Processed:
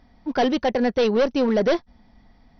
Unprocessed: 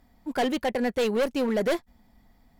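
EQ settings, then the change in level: dynamic bell 2.2 kHz, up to -4 dB, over -46 dBFS, Q 1.4; brick-wall FIR low-pass 6.1 kHz; +5.5 dB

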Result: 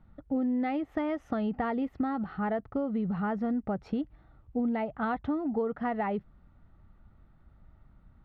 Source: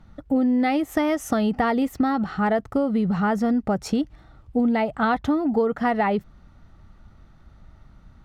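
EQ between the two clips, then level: distance through air 350 m; -8.0 dB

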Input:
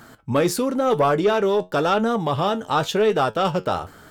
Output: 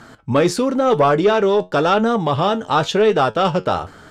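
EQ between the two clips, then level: low-pass 7.1 kHz 12 dB/octave; +4.0 dB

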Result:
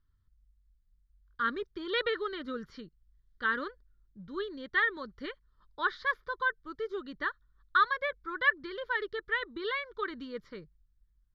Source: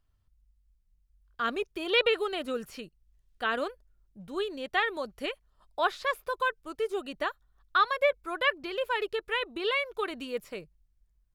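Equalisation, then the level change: low-pass 3.7 kHz 12 dB/octave; dynamic bell 1.8 kHz, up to +5 dB, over -45 dBFS, Q 4.2; static phaser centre 2.6 kHz, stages 6; 0.0 dB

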